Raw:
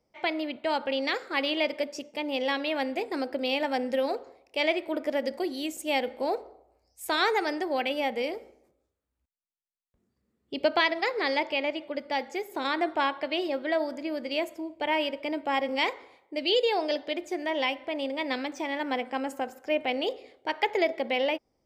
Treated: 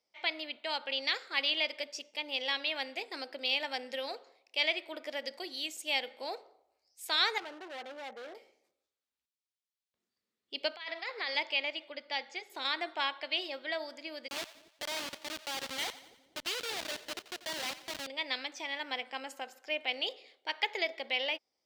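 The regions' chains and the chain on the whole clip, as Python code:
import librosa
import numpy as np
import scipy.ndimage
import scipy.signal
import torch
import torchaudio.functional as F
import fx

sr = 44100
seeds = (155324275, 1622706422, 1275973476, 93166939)

y = fx.chain(x, sr, fx.lowpass(hz=1400.0, slope=24),
    fx.overload_stage(gain_db=31.0), at=(7.38, 8.35))
y = fx.chain(y, sr, fx.highpass(hz=560.0, slope=6),
    fx.high_shelf(hz=4000.0, db=-10.5),
    fx.over_compress(threshold_db=-31.0, ratio=-0.5), at=(10.76, 11.35))
y = fx.chain(y, sr, fx.lowpass(hz=5800.0, slope=12),
    fx.notch(hz=410.0, q=10.0), at=(11.93, 12.5))
y = fx.chain(y, sr, fx.schmitt(flips_db=-27.5),
    fx.echo_split(split_hz=510.0, low_ms=240, high_ms=88, feedback_pct=52, wet_db=-15.5), at=(14.28, 18.07))
y = fx.highpass(y, sr, hz=810.0, slope=6)
y = fx.peak_eq(y, sr, hz=3900.0, db=10.5, octaves=1.8)
y = F.gain(torch.from_numpy(y), -7.5).numpy()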